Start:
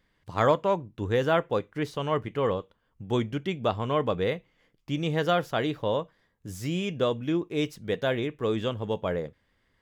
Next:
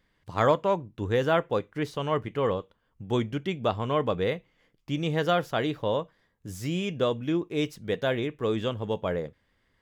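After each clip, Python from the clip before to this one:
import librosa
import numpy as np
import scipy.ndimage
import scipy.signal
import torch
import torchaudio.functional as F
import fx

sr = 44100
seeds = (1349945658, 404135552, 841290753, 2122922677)

y = x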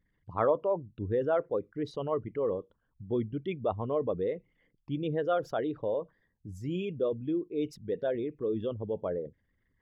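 y = fx.envelope_sharpen(x, sr, power=2.0)
y = y * librosa.db_to_amplitude(-4.0)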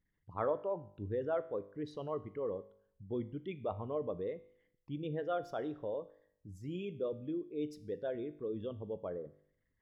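y = fx.comb_fb(x, sr, f0_hz=50.0, decay_s=0.65, harmonics='all', damping=0.0, mix_pct=50)
y = y * librosa.db_to_amplitude(-3.0)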